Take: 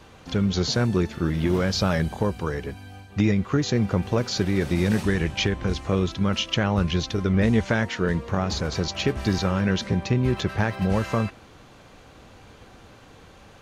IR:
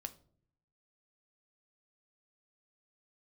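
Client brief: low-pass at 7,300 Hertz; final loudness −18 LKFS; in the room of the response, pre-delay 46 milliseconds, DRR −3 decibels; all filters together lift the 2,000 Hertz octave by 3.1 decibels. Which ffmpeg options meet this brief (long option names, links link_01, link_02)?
-filter_complex "[0:a]lowpass=7300,equalizer=frequency=2000:width_type=o:gain=4,asplit=2[link_01][link_02];[1:a]atrim=start_sample=2205,adelay=46[link_03];[link_02][link_03]afir=irnorm=-1:irlink=0,volume=6.5dB[link_04];[link_01][link_04]amix=inputs=2:normalize=0,volume=0.5dB"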